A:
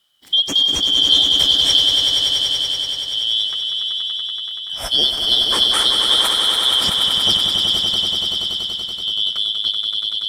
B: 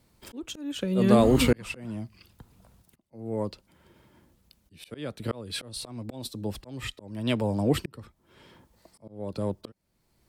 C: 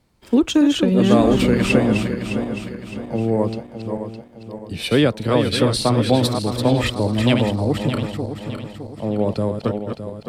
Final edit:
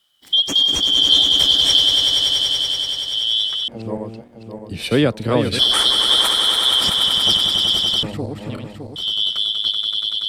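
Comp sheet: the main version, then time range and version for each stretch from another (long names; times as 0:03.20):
A
0:03.68–0:05.59: punch in from C
0:08.03–0:08.96: punch in from C
not used: B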